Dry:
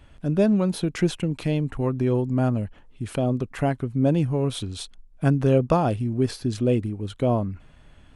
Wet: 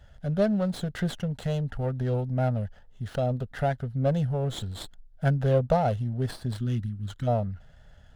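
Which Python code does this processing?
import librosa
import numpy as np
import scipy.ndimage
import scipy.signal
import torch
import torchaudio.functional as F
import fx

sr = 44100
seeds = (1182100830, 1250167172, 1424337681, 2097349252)

y = fx.spec_box(x, sr, start_s=6.53, length_s=0.74, low_hz=380.0, high_hz=1000.0, gain_db=-25)
y = fx.fixed_phaser(y, sr, hz=1600.0, stages=8)
y = fx.running_max(y, sr, window=5)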